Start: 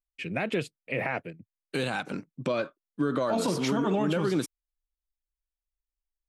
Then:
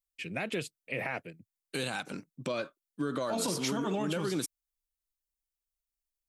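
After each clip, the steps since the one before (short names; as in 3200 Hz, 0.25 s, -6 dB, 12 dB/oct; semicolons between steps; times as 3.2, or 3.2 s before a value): high shelf 4100 Hz +12 dB; gain -6 dB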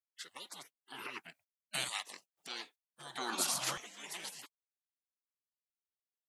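LFO high-pass saw down 0.53 Hz 320–1700 Hz; spectral gate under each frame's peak -20 dB weak; gain +4.5 dB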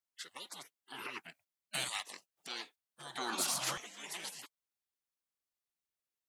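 soft clip -26.5 dBFS, distortion -18 dB; gain +1 dB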